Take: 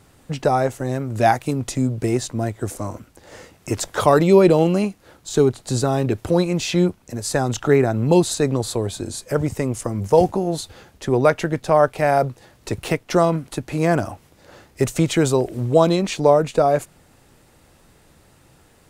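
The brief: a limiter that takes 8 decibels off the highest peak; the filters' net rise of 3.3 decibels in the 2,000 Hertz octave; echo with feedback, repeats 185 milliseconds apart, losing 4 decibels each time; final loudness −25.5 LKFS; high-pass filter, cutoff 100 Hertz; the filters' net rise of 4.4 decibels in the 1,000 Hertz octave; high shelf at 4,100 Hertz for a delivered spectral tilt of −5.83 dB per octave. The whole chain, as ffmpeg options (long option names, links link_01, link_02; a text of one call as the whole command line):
ffmpeg -i in.wav -af "highpass=100,equalizer=frequency=1000:width_type=o:gain=6,equalizer=frequency=2000:width_type=o:gain=3,highshelf=frequency=4100:gain=-4.5,alimiter=limit=-6.5dB:level=0:latency=1,aecho=1:1:185|370|555|740|925|1110|1295|1480|1665:0.631|0.398|0.25|0.158|0.0994|0.0626|0.0394|0.0249|0.0157,volume=-7dB" out.wav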